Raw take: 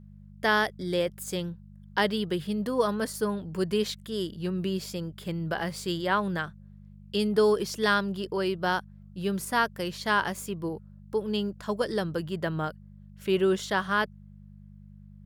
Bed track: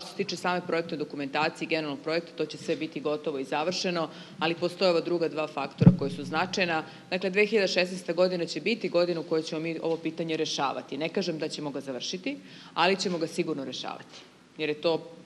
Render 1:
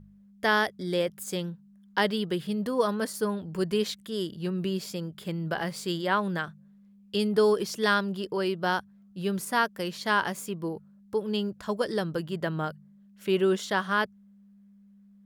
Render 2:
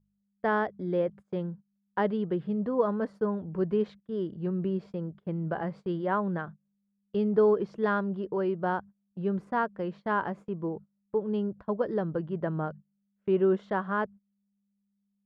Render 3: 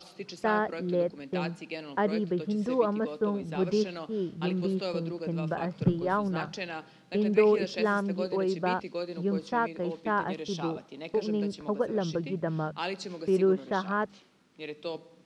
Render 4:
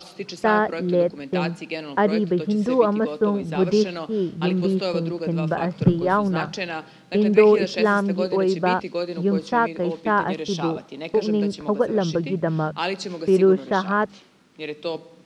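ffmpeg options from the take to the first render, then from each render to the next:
-af "bandreject=f=50:t=h:w=4,bandreject=f=100:t=h:w=4,bandreject=f=150:t=h:w=4"
-af "lowpass=1.1k,agate=range=-22dB:threshold=-43dB:ratio=16:detection=peak"
-filter_complex "[1:a]volume=-10dB[a];[0:a][a]amix=inputs=2:normalize=0"
-af "volume=8dB"

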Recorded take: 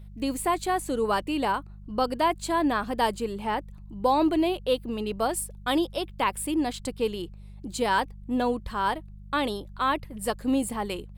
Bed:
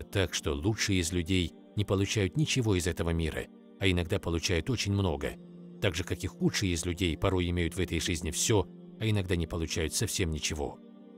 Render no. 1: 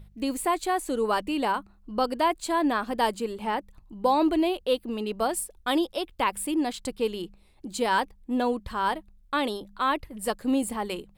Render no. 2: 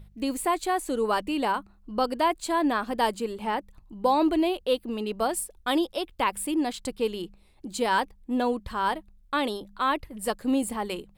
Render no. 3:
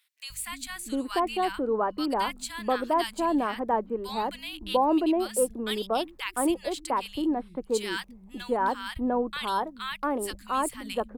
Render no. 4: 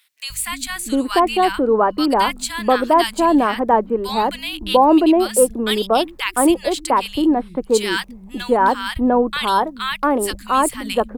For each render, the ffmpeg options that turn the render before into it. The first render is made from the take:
-af "bandreject=f=50:t=h:w=4,bandreject=f=100:t=h:w=4,bandreject=f=150:t=h:w=4,bandreject=f=200:t=h:w=4"
-af anull
-filter_complex "[0:a]acrossover=split=160|1500[a][b][c];[a]adelay=300[d];[b]adelay=700[e];[d][e][c]amix=inputs=3:normalize=0"
-af "volume=11dB,alimiter=limit=-2dB:level=0:latency=1"

